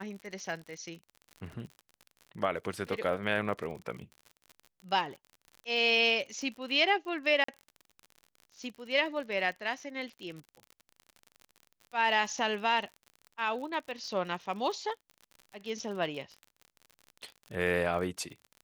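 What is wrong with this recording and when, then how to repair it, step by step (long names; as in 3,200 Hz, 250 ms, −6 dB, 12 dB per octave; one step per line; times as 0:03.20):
surface crackle 50 per second −40 dBFS
0:07.44–0:07.48: drop-out 44 ms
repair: click removal
repair the gap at 0:07.44, 44 ms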